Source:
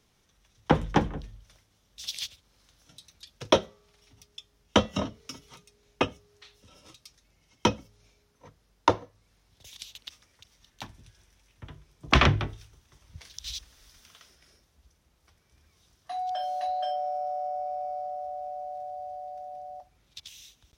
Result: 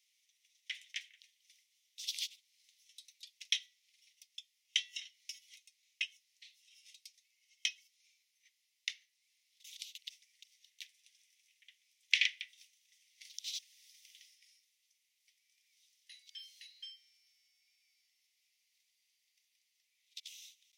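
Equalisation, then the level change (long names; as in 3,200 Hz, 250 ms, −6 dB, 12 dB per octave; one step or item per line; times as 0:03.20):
Chebyshev high-pass filter 2,000 Hz, order 6
−3.5 dB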